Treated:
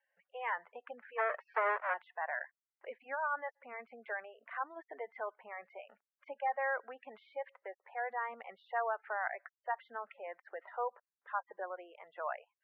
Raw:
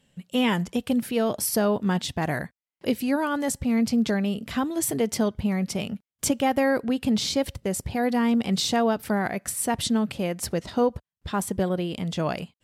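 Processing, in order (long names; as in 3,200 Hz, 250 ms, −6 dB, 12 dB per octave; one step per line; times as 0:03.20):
0:01.18–0:01.94: each half-wave held at its own peak
Bessel high-pass filter 1,000 Hz, order 4
gate on every frequency bin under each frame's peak −15 dB strong
Butterworth low-pass 1,900 Hz 36 dB per octave
level −3 dB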